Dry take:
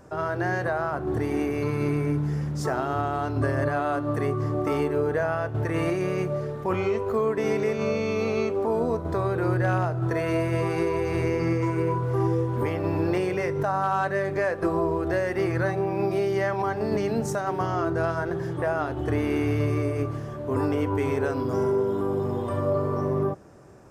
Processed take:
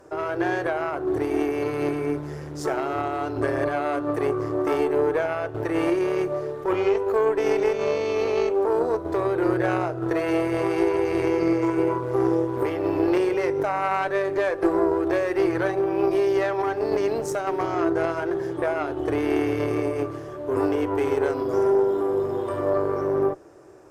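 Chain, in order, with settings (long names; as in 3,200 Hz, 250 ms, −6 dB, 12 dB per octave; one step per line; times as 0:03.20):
harmonic generator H 2 −9 dB, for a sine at −14.5 dBFS
low shelf with overshoot 270 Hz −6.5 dB, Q 3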